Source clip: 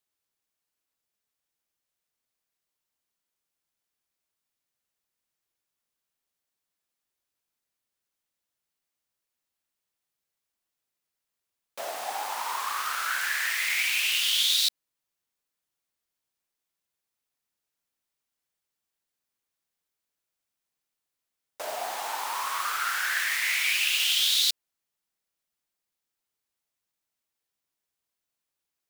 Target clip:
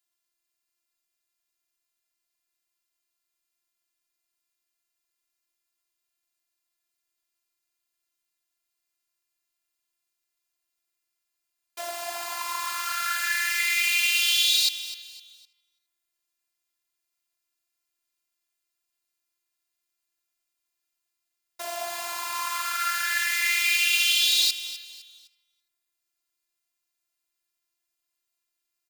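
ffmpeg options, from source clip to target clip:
ffmpeg -i in.wav -filter_complex "[0:a]afftfilt=real='hypot(re,im)*cos(PI*b)':imag='0':win_size=512:overlap=0.75,tiltshelf=frequency=870:gain=-4,asplit=2[link_01][link_02];[link_02]adelay=333,lowpass=frequency=3300:poles=1,volume=-20.5dB,asplit=2[link_03][link_04];[link_04]adelay=333,lowpass=frequency=3300:poles=1,volume=0.27[link_05];[link_03][link_05]amix=inputs=2:normalize=0[link_06];[link_01][link_06]amix=inputs=2:normalize=0,asoftclip=type=hard:threshold=-8dB,asplit=2[link_07][link_08];[link_08]aecho=0:1:255|510|765:0.2|0.0698|0.0244[link_09];[link_07][link_09]amix=inputs=2:normalize=0,volume=2.5dB" out.wav

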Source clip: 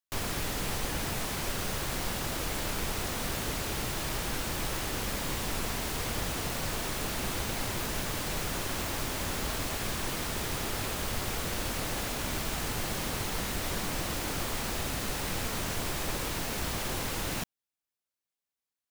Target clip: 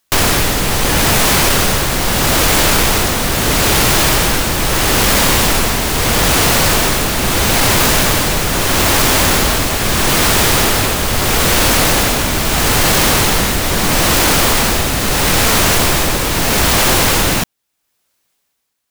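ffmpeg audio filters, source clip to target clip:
ffmpeg -i in.wav -af "tremolo=f=0.77:d=0.58,apsyclip=32.5dB,volume=-7.5dB" out.wav

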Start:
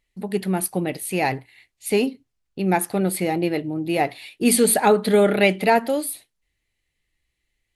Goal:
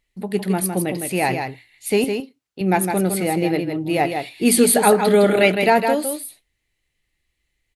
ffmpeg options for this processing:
ffmpeg -i in.wav -filter_complex "[0:a]asettb=1/sr,asplit=3[link_01][link_02][link_03];[link_01]atrim=end=2.044[link_04];[link_02]atrim=start=2.04:end=2.61,asetpts=PTS-STARTPTS,afade=type=in:duration=0.004:curve=qsin,afade=type=out:start_time=0.566:duration=0.004:curve=qsin,highpass=frequency=430:poles=1[link_05];[link_03]atrim=start=2.606[link_06];[link_04][link_05]acrossfade=duration=0.004:curve1=hsin:curve2=qsin[link_07];[link_07][link_06]acrossfade=duration=0.004:curve1=qsin:curve2=hsin,aecho=1:1:159:0.501,volume=1.5dB" out.wav

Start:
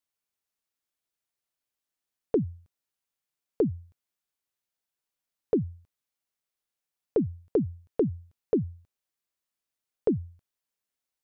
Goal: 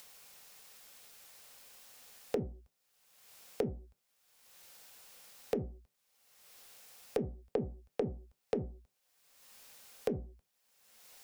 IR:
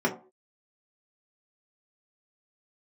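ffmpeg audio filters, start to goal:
-filter_complex "[0:a]acompressor=mode=upward:threshold=-33dB:ratio=2.5,afreqshift=-27,acompressor=threshold=-28dB:ratio=6,lowshelf=frequency=420:width_type=q:width=1.5:gain=-6.5,asplit=2[link_01][link_02];[1:a]atrim=start_sample=2205[link_03];[link_02][link_03]afir=irnorm=-1:irlink=0,volume=-20dB[link_04];[link_01][link_04]amix=inputs=2:normalize=0,volume=1dB"

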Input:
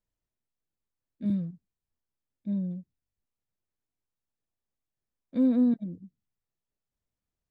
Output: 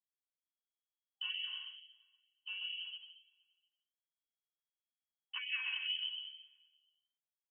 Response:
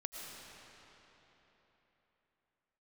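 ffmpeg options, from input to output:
-filter_complex "[0:a]agate=range=-33dB:threshold=-50dB:ratio=3:detection=peak,afftfilt=real='re*lt(hypot(re,im),0.0891)':imag='im*lt(hypot(re,im),0.0891)':win_size=1024:overlap=0.75,acrossover=split=510[link_01][link_02];[link_01]aeval=exprs='val(0)*(1-0.5/2+0.5/2*cos(2*PI*4.9*n/s))':channel_layout=same[link_03];[link_02]aeval=exprs='val(0)*(1-0.5/2-0.5/2*cos(2*PI*4.9*n/s))':channel_layout=same[link_04];[link_03][link_04]amix=inputs=2:normalize=0,asplit=2[link_05][link_06];[link_06]aecho=0:1:235|470|705:0.0708|0.0347|0.017[link_07];[link_05][link_07]amix=inputs=2:normalize=0,lowpass=frequency=2800:width_type=q:width=0.5098,lowpass=frequency=2800:width_type=q:width=0.6013,lowpass=frequency=2800:width_type=q:width=0.9,lowpass=frequency=2800:width_type=q:width=2.563,afreqshift=-3300,aecho=1:1:2.7:0.61,afftfilt=real='re*(1-between(b*sr/4096,190,790))':imag='im*(1-between(b*sr/4096,190,790))':win_size=4096:overlap=0.75,asplit=2[link_08][link_09];[link_09]aecho=0:1:130|227.5|300.6|355.5|396.6:0.631|0.398|0.251|0.158|0.1[link_10];[link_08][link_10]amix=inputs=2:normalize=0,afftfilt=real='re*gte(b*sr/1024,310*pow(1900/310,0.5+0.5*sin(2*PI*2.2*pts/sr)))':imag='im*gte(b*sr/1024,310*pow(1900/310,0.5+0.5*sin(2*PI*2.2*pts/sr)))':win_size=1024:overlap=0.75,volume=8dB"

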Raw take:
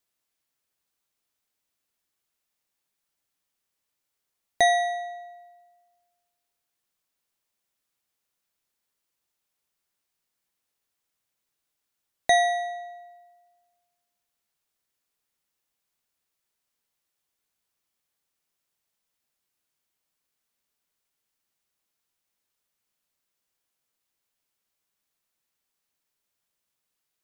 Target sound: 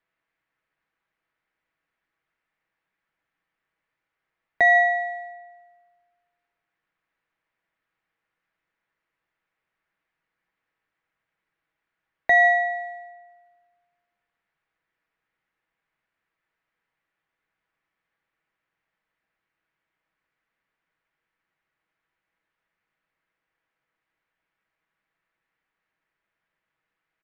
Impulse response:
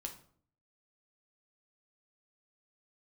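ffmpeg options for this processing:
-filter_complex "[0:a]lowpass=frequency=1900:width_type=q:width=2.1,aecho=1:1:6.2:0.34,acrossover=split=270[link_01][link_02];[link_01]acrusher=samples=10:mix=1:aa=0.000001:lfo=1:lforange=16:lforate=1.8[link_03];[link_02]aecho=1:1:151:0.075[link_04];[link_03][link_04]amix=inputs=2:normalize=0,alimiter=level_in=12dB:limit=-1dB:release=50:level=0:latency=1,volume=-8.5dB"

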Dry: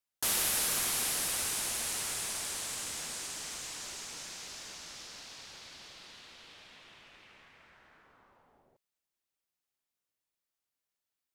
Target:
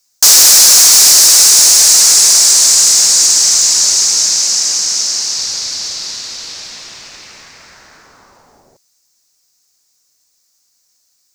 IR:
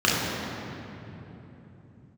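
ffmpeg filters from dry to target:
-filter_complex "[0:a]highshelf=frequency=8900:gain=8.5,acrossover=split=340|6200[link_01][link_02][link_03];[link_01]acompressor=threshold=-60dB:ratio=6[link_04];[link_02]aexciter=amount=5.6:drive=9.9:freq=4800[link_05];[link_04][link_05][link_03]amix=inputs=3:normalize=0,asettb=1/sr,asplit=3[link_06][link_07][link_08];[link_06]atrim=end=4.424[link_09];[link_07]atrim=start=4.42:end=5.35,asetpts=PTS-STARTPTS,afade=type=in:duration=0.004:curve=qsin,afade=type=out:start_time=0.926:duration=0.004:curve=qsin,afreqshift=140[link_10];[link_08]atrim=start=5.346[link_11];[link_09][link_10]acrossfade=duration=0.004:curve1=hsin:curve2=qsin[link_12];[link_12][link_11]acrossfade=duration=0.004:curve1=qsin:curve2=hsin,apsyclip=20dB,volume=-1.5dB"

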